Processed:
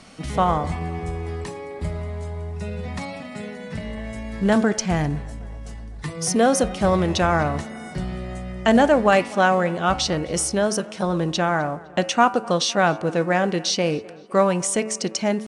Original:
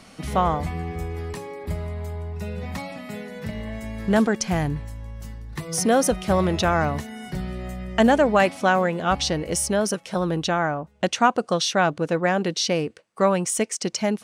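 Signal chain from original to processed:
hum removal 108.5 Hz, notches 27
on a send at −23 dB: convolution reverb, pre-delay 7 ms
on the sum: tempo change 0.92×
noise that follows the level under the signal 34 dB
tape delay 254 ms, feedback 69%, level −20.5 dB, low-pass 2,500 Hz
level +1.5 dB
AAC 96 kbit/s 22,050 Hz

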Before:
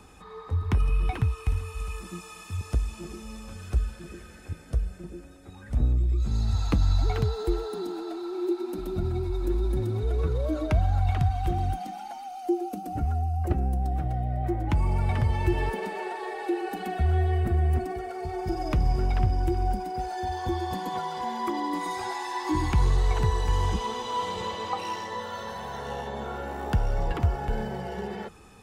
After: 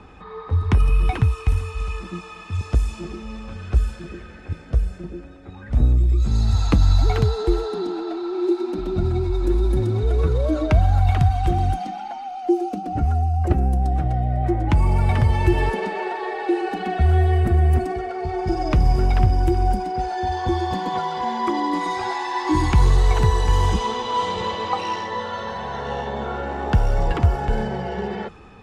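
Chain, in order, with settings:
low-pass that shuts in the quiet parts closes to 2,800 Hz, open at −19.5 dBFS
level +7 dB

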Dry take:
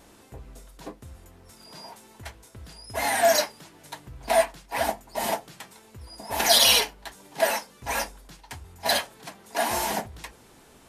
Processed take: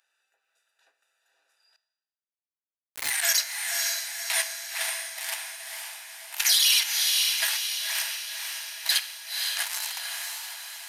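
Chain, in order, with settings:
adaptive Wiener filter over 41 samples
Bessel high-pass filter 2,300 Hz, order 4
brickwall limiter −18 dBFS, peak gain reduction 11 dB
on a send: feedback delay with all-pass diffusion 527 ms, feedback 53%, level −3 dB
0:01.76–0:03.10: on the sum: bit-depth reduction 6 bits, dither none
four-comb reverb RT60 0.98 s, combs from 26 ms, DRR 13.5 dB
level +7.5 dB

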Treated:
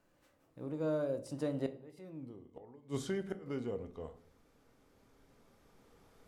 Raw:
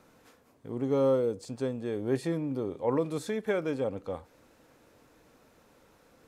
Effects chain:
camcorder AGC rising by 6.8 dB per second
source passing by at 0:02.19, 41 m/s, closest 4.3 metres
low-shelf EQ 69 Hz +11.5 dB
gate with flip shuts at −37 dBFS, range −29 dB
on a send: convolution reverb RT60 0.55 s, pre-delay 3 ms, DRR 9 dB
on the sum: level +12.5 dB

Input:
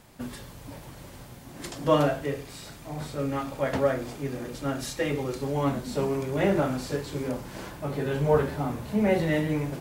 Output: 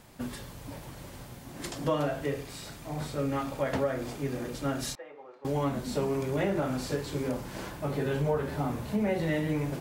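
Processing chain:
downward compressor 5 to 1, threshold −25 dBFS, peak gain reduction 9 dB
0:04.95–0:05.45: four-pole ladder band-pass 910 Hz, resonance 25%

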